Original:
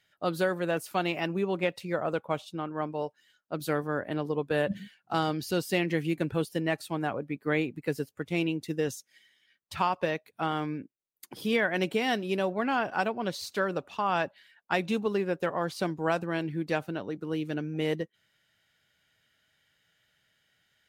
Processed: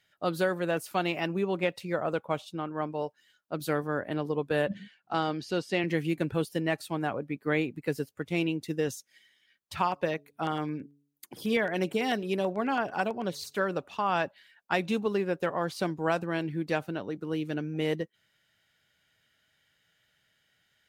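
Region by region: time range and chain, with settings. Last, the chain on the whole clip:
0:04.67–0:05.84: high-pass filter 180 Hz 6 dB per octave + high-frequency loss of the air 82 metres
0:09.81–0:13.61: hum removal 143.2 Hz, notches 3 + auto-filter notch saw down 9.1 Hz 920–6,100 Hz
whole clip: no processing

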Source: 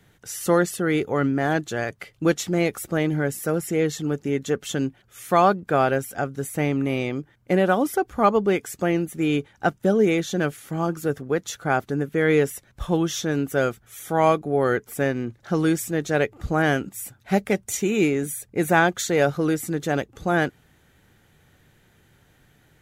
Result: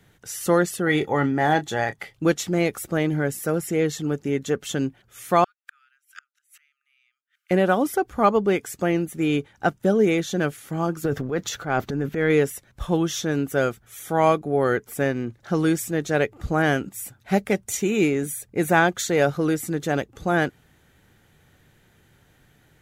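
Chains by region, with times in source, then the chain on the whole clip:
0:00.86–0:02.14: double-tracking delay 27 ms −12 dB + hollow resonant body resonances 830/1,900/3,400 Hz, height 13 dB
0:05.44–0:07.51: parametric band 2,800 Hz +5 dB 0.43 octaves + gate with flip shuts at −24 dBFS, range −34 dB + linear-phase brick-wall high-pass 1,200 Hz
0:11.04–0:12.30: parametric band 9,800 Hz −10 dB 0.69 octaves + transient designer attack −6 dB, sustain +9 dB
whole clip: no processing

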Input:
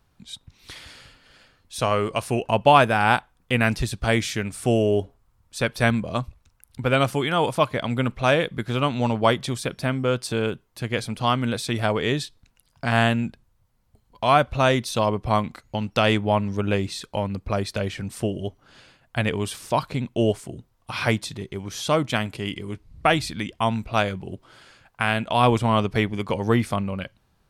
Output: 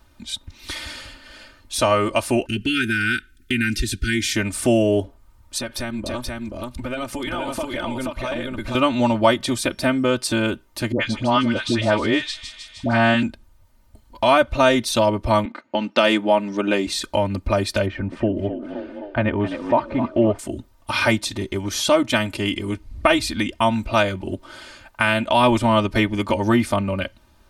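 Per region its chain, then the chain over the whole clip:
0:02.46–0:04.36: linear-phase brick-wall band-stop 420–1,300 Hz + downward compressor 2 to 1, threshold −26 dBFS
0:05.58–0:08.75: amplitude modulation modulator 120 Hz, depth 50% + downward compressor, threshold −32 dBFS + single-tap delay 479 ms −3 dB
0:10.92–0:13.23: high-frequency loss of the air 100 metres + all-pass dispersion highs, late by 84 ms, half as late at 850 Hz + delay with a high-pass on its return 155 ms, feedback 71%, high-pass 5,200 Hz, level −5 dB
0:15.45–0:16.87: low-pass that shuts in the quiet parts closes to 1,900 Hz, open at −16.5 dBFS + high-pass filter 200 Hz 24 dB per octave
0:17.86–0:20.39: low-pass filter 1,600 Hz + echo with shifted repeats 259 ms, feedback 56%, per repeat +68 Hz, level −12 dB
whole clip: comb filter 3.3 ms, depth 93%; downward compressor 1.5 to 1, threshold −32 dBFS; level +7.5 dB

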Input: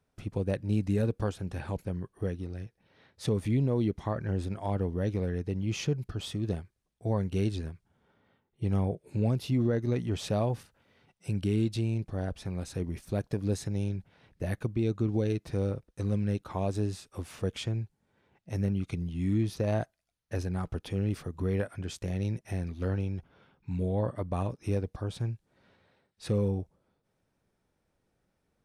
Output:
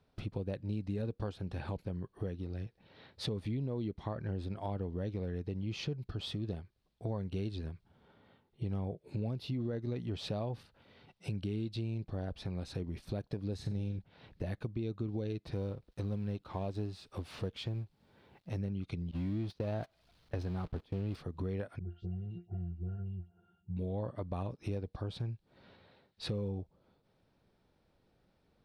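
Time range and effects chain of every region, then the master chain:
0:13.55–0:13.99: parametric band 80 Hz +6.5 dB 2.5 octaves + flutter between parallel walls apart 7.5 metres, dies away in 0.32 s
0:15.52–0:18.56: mu-law and A-law mismatch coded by mu + expander for the loud parts, over −39 dBFS
0:19.11–0:21.16: converter with a step at zero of −37.5 dBFS + noise gate −35 dBFS, range −25 dB + high-shelf EQ 6,400 Hz −5 dB
0:21.79–0:23.77: resonances in every octave F, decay 0.17 s + all-pass dispersion highs, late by 105 ms, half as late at 1,600 Hz
whole clip: drawn EQ curve 860 Hz 0 dB, 1,900 Hz −3 dB, 4,300 Hz +3 dB, 6,600 Hz −11 dB; downward compressor 3 to 1, threshold −43 dBFS; level +4.5 dB

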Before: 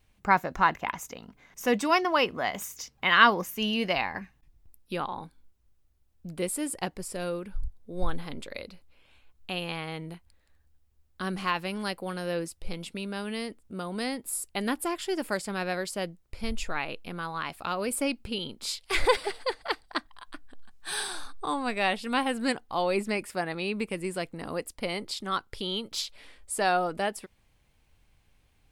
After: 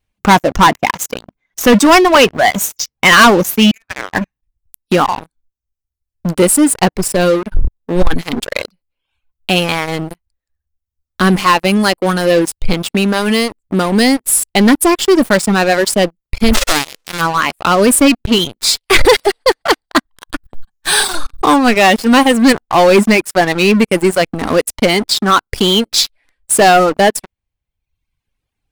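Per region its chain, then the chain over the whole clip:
0:03.71–0:04.13: four-pole ladder band-pass 1,500 Hz, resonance 55% + frequency shifter −470 Hz
0:16.53–0:17.20: spectral envelope flattened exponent 0.1 + high-frequency loss of the air 64 metres
whole clip: reverb reduction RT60 1.3 s; dynamic equaliser 250 Hz, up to +4 dB, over −46 dBFS, Q 1.3; leveller curve on the samples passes 5; level +3.5 dB

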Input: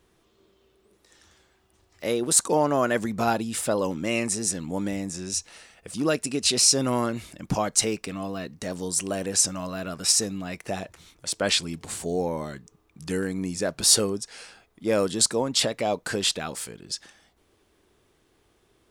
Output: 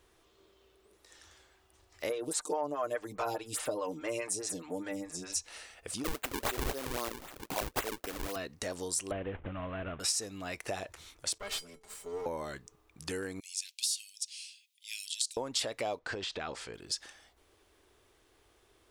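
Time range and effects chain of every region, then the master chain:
0:02.09–0:05.36: comb filter 6.6 ms, depth 75% + phaser with staggered stages 4.8 Hz
0:06.04–0:08.36: high-pass filter 270 Hz + sample-and-hold swept by an LFO 39×, swing 160% 3.8 Hz + high-shelf EQ 9,000 Hz +9 dB
0:09.11–0:10.00: variable-slope delta modulation 16 kbit/s + low-shelf EQ 250 Hz +11.5 dB
0:11.38–0:12.26: lower of the sound and its delayed copy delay 4.9 ms + tuned comb filter 440 Hz, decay 0.16 s, harmonics odd, mix 80%
0:13.40–0:15.37: Butterworth high-pass 2,600 Hz 48 dB per octave + downward compressor 2.5 to 1, threshold −22 dBFS
0:15.99–0:16.74: downward compressor 10 to 1, threshold −28 dBFS + high-frequency loss of the air 140 metres
whole clip: downward compressor 4 to 1, threshold −31 dBFS; parametric band 180 Hz −11.5 dB 1.2 octaves

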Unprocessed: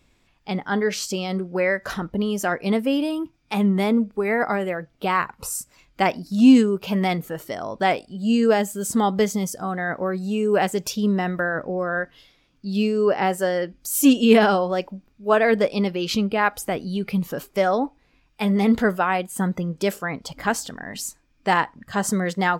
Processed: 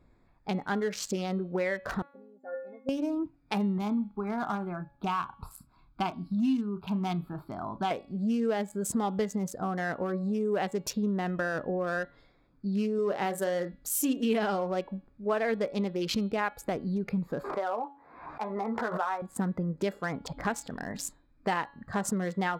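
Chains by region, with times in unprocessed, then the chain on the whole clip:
0:02.02–0:02.89: spectral envelope exaggerated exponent 1.5 + loudspeaker in its box 160–3,100 Hz, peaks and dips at 220 Hz −6 dB, 360 Hz +4 dB, 720 Hz +9 dB, 1,200 Hz −7 dB, 1,800 Hz −3 dB, 2,600 Hz −4 dB + stiff-string resonator 260 Hz, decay 0.59 s, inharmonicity 0.008
0:03.78–0:07.91: phaser with its sweep stopped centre 1,900 Hz, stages 6 + double-tracking delay 34 ms −12.5 dB
0:12.95–0:13.79: high-shelf EQ 6,200 Hz +7.5 dB + double-tracking delay 35 ms −10 dB
0:17.44–0:19.22: resonant band-pass 1,000 Hz, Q 1.7 + double-tracking delay 13 ms −6 dB + background raised ahead of every attack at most 74 dB per second
whole clip: adaptive Wiener filter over 15 samples; downward compressor 3 to 1, threshold −29 dBFS; hum removal 281.4 Hz, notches 15

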